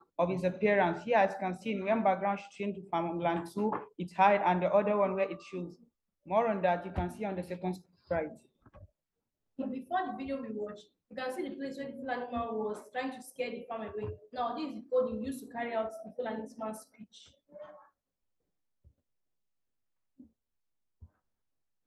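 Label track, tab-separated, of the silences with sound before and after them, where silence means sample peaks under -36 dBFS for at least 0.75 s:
8.270000	9.590000	silence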